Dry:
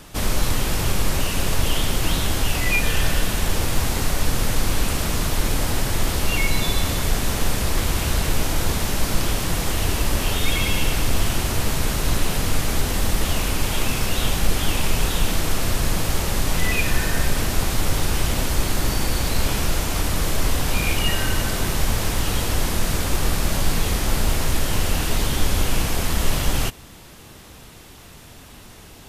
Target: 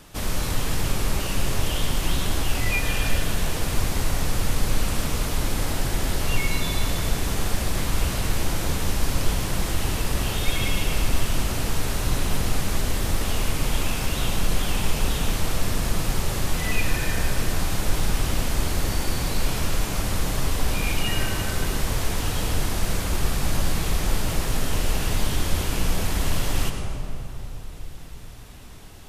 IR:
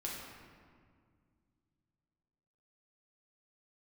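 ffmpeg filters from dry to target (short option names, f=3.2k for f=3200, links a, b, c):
-filter_complex "[0:a]asplit=2[a][b];[1:a]atrim=start_sample=2205,asetrate=22491,aresample=44100,adelay=105[c];[b][c]afir=irnorm=-1:irlink=0,volume=-9.5dB[d];[a][d]amix=inputs=2:normalize=0,volume=-5dB"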